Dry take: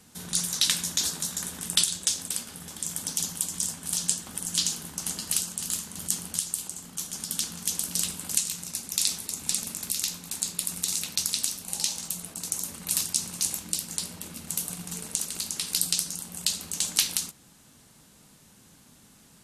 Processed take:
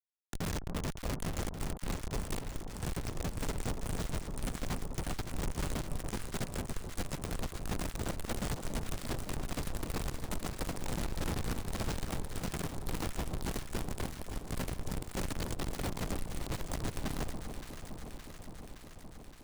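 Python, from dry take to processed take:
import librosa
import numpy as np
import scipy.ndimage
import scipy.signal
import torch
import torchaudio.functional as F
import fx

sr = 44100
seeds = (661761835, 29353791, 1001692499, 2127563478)

y = fx.notch(x, sr, hz=970.0, q=7.9)
y = fx.over_compress(y, sr, threshold_db=-32.0, ratio=-1.0)
y = fx.fixed_phaser(y, sr, hz=450.0, stages=6)
y = fx.schmitt(y, sr, flips_db=-25.5)
y = fx.echo_alternate(y, sr, ms=284, hz=1100.0, feedback_pct=85, wet_db=-7)
y = y * librosa.db_to_amplitude(1.0)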